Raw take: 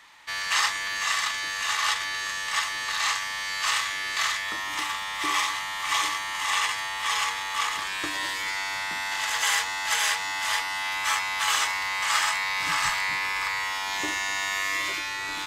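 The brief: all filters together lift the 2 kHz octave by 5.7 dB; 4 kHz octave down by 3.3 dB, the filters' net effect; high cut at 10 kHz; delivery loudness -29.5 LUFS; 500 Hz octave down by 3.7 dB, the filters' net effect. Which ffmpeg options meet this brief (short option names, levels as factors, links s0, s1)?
-af "lowpass=10000,equalizer=f=500:t=o:g=-6,equalizer=f=2000:t=o:g=8.5,equalizer=f=4000:t=o:g=-8,volume=0.447"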